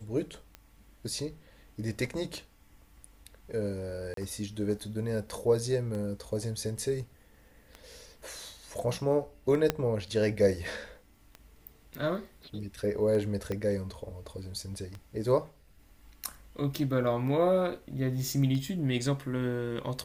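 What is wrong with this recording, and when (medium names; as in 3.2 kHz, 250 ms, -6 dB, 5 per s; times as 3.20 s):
tick 33 1/3 rpm -26 dBFS
4.14–4.17 s: dropout 33 ms
9.70 s: pop -11 dBFS
13.52 s: pop -21 dBFS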